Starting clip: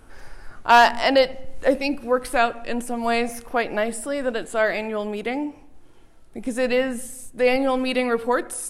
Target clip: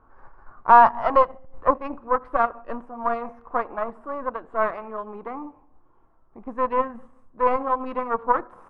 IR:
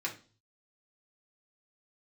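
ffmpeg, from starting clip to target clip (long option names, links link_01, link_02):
-af "aeval=exprs='0.501*(cos(1*acos(clip(val(0)/0.501,-1,1)))-cos(1*PI/2))+0.126*(cos(4*acos(clip(val(0)/0.501,-1,1)))-cos(4*PI/2))+0.0282*(cos(7*acos(clip(val(0)/0.501,-1,1)))-cos(7*PI/2))':channel_layout=same,lowpass=frequency=1100:width_type=q:width=5.1,volume=-6dB"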